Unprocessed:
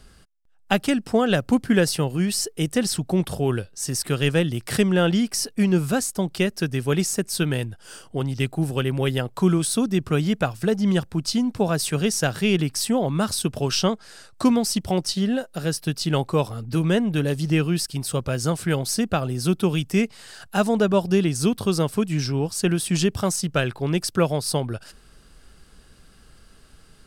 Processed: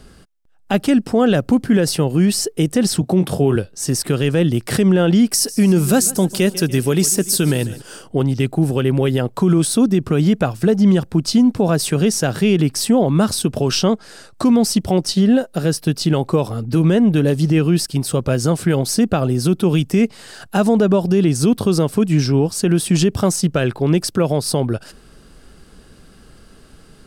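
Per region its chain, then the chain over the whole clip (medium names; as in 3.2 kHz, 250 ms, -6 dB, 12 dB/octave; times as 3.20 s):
3.01–3.56 s: high-pass 82 Hz 24 dB/octave + doubling 22 ms -10 dB
5.31–7.82 s: treble shelf 4.9 kHz +12 dB + feedback delay 145 ms, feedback 56%, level -20 dB
whole clip: peaking EQ 300 Hz +7 dB 2.7 oct; peak limiter -10.5 dBFS; trim +4 dB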